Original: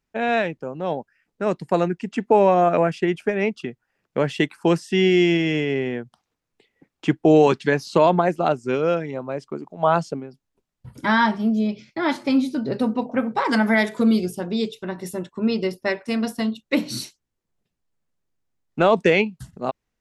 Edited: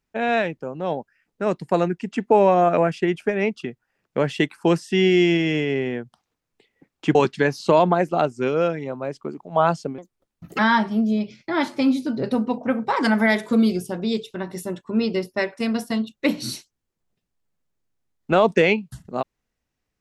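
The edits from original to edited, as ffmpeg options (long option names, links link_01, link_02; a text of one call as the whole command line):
ffmpeg -i in.wav -filter_complex "[0:a]asplit=4[link_01][link_02][link_03][link_04];[link_01]atrim=end=7.152[link_05];[link_02]atrim=start=7.418:end=10.254[link_06];[link_03]atrim=start=10.25:end=11.07,asetpts=PTS-STARTPTS,asetrate=59535,aresample=44100[link_07];[link_04]atrim=start=11.066[link_08];[link_05][link_06]acrossfade=duration=0.004:curve1=hsin:curve2=hsin[link_09];[link_09][link_07]acrossfade=duration=0.004:curve1=hsin:curve2=hsin[link_10];[link_10][link_08]acrossfade=duration=0.004:curve1=hsin:curve2=hsin" out.wav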